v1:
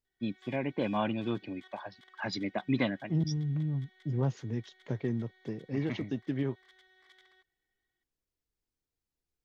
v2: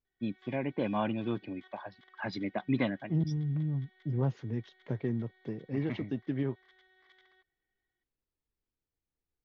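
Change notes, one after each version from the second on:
master: add air absorption 180 m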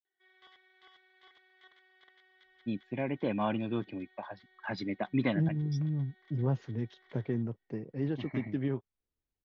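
first voice: entry +2.45 s; second voice: entry +2.25 s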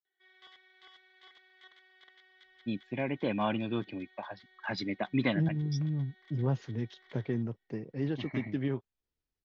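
master: add high shelf 2400 Hz +7.5 dB

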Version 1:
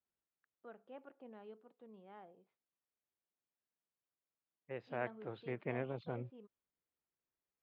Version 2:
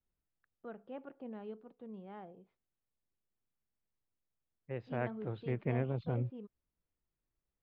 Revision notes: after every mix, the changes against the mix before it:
first voice +4.0 dB; master: remove HPF 450 Hz 6 dB/oct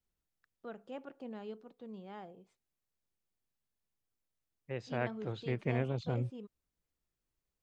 master: remove air absorption 420 m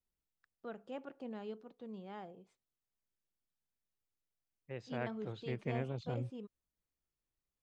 second voice -5.0 dB

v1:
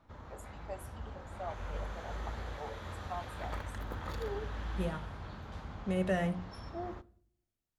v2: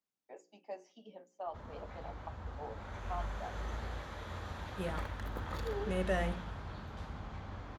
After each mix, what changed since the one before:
first voice: add Chebyshev band-pass 170–6400 Hz, order 5; second voice: add HPF 300 Hz 6 dB/oct; background: entry +1.45 s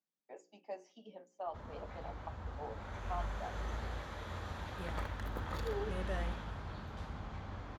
second voice -8.5 dB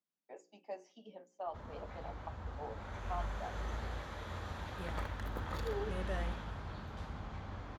none

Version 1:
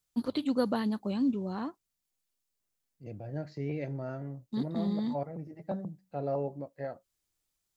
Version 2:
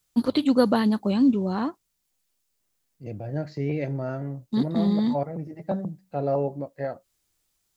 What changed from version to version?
first voice +9.0 dB; second voice +7.5 dB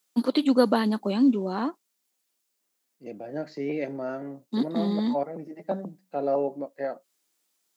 master: add HPF 220 Hz 24 dB/oct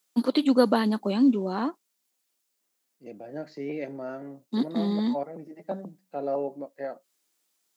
second voice -3.5 dB

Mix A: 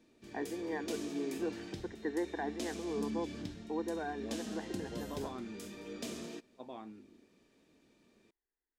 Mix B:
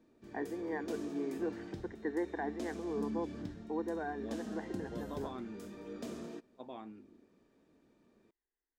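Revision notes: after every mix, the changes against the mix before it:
background: add band shelf 5300 Hz -9 dB 3 oct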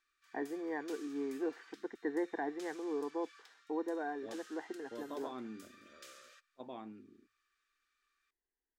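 background: add brick-wall FIR high-pass 1100 Hz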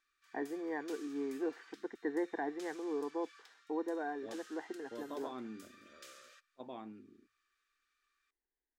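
none

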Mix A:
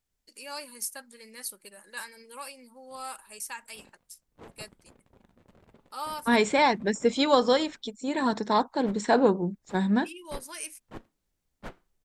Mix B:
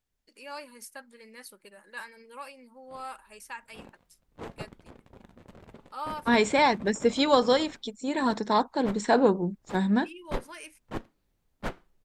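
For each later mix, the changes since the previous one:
first voice: add tone controls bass -1 dB, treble -13 dB; background +8.0 dB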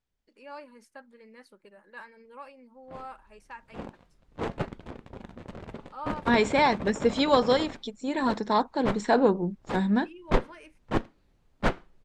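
first voice: add high shelf 2200 Hz -12 dB; background +9.0 dB; master: add air absorption 56 m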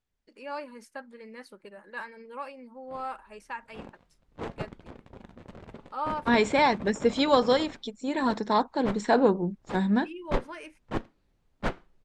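first voice +6.5 dB; background -4.5 dB

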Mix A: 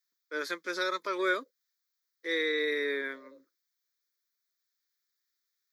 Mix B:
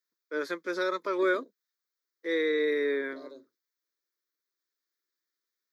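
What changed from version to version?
second voice: remove vowel filter e; master: add tilt shelf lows +6 dB, about 1300 Hz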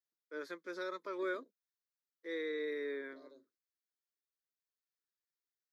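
first voice -11.5 dB; second voice -12.0 dB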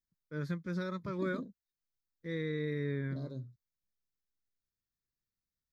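second voice +9.0 dB; master: remove steep high-pass 330 Hz 36 dB/oct

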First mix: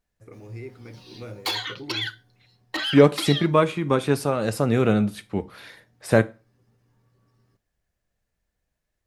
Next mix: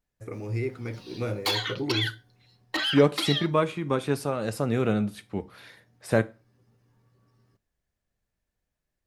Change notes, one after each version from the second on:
first voice +8.0 dB; second voice -5.0 dB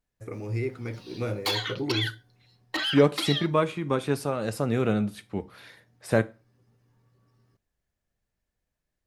background: send off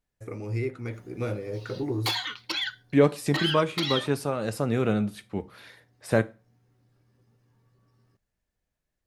background: entry +0.60 s

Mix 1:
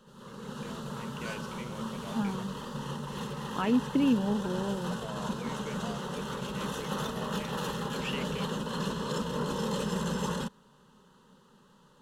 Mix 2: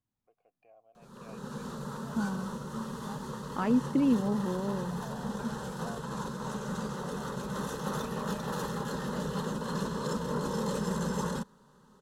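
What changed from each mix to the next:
first voice: add vowel filter a; background: entry +0.95 s; master: add bell 2900 Hz -10.5 dB 0.55 oct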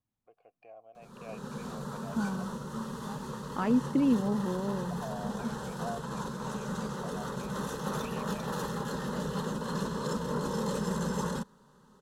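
first voice +8.5 dB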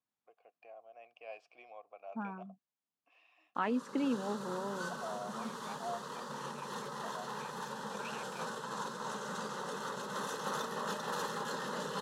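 background: entry +2.60 s; master: add weighting filter A

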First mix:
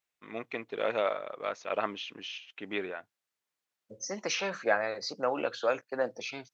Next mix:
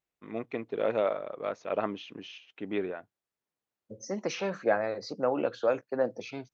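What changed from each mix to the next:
master: add tilt shelf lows +7 dB, about 820 Hz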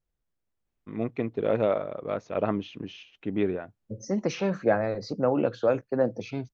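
first voice: entry +0.65 s; master: remove HPF 550 Hz 6 dB/oct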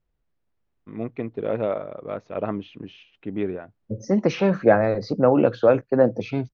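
second voice +7.5 dB; master: add air absorption 140 m

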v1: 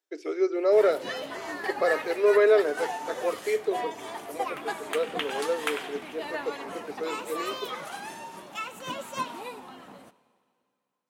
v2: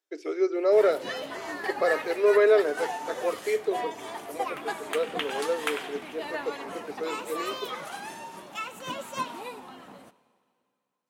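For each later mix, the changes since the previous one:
none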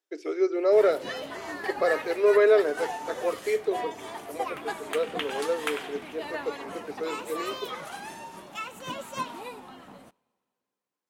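background: send -11.5 dB; master: remove HPF 140 Hz 6 dB/oct

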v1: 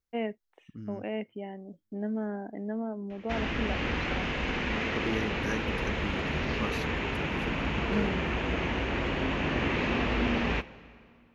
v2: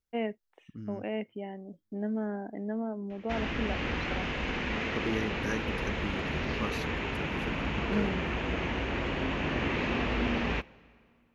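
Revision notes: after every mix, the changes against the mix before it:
background: send -7.0 dB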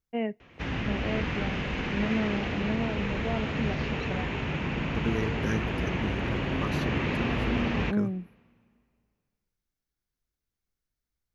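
first voice: send on; background: entry -2.70 s; master: add bell 130 Hz +7.5 dB 1.3 oct

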